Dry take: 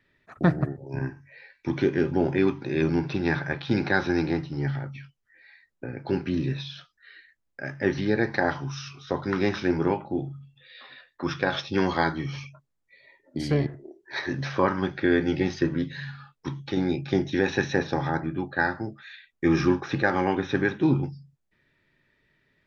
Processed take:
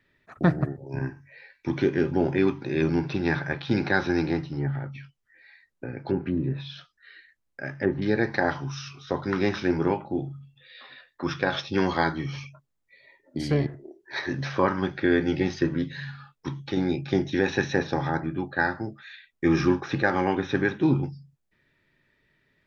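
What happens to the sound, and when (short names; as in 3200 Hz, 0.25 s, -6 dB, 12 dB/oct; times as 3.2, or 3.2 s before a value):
4.49–8.02 treble ducked by the level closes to 950 Hz, closed at -22 dBFS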